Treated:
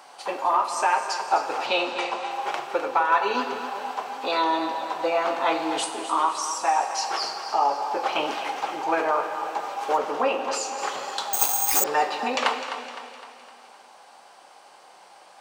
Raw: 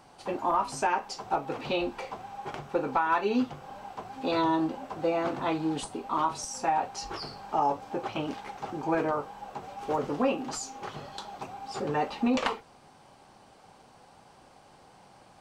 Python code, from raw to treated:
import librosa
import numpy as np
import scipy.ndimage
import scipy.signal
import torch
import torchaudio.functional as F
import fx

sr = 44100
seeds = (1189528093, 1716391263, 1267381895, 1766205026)

y = scipy.signal.sosfilt(scipy.signal.butter(2, 630.0, 'highpass', fs=sr, output='sos'), x)
y = fx.rider(y, sr, range_db=3, speed_s=0.5)
y = fx.steep_lowpass(y, sr, hz=9200.0, slope=36, at=(1.66, 2.31))
y = fx.high_shelf(y, sr, hz=5700.0, db=-8.0, at=(9.97, 10.79))
y = fx.echo_feedback(y, sr, ms=256, feedback_pct=49, wet_db=-11.5)
y = fx.rev_plate(y, sr, seeds[0], rt60_s=2.3, hf_ratio=1.0, predelay_ms=0, drr_db=7.0)
y = fx.resample_bad(y, sr, factor=6, down='none', up='zero_stuff', at=(11.33, 11.84))
y = F.gain(torch.from_numpy(y), 8.0).numpy()